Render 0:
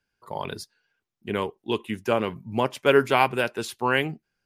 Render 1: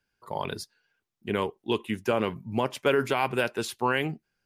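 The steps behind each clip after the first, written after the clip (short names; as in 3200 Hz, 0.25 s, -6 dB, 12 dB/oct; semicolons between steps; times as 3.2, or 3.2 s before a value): limiter -13.5 dBFS, peak gain reduction 8 dB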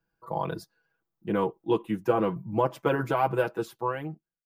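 ending faded out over 1.11 s; band shelf 4600 Hz -12.5 dB 3 oct; comb 6.1 ms, depth 92%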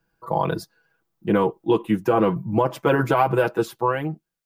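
limiter -17.5 dBFS, peak gain reduction 6.5 dB; gain +8.5 dB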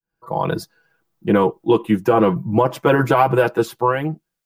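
opening faded in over 0.56 s; gain +4 dB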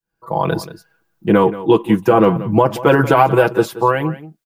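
echo 0.181 s -15.5 dB; gain +3 dB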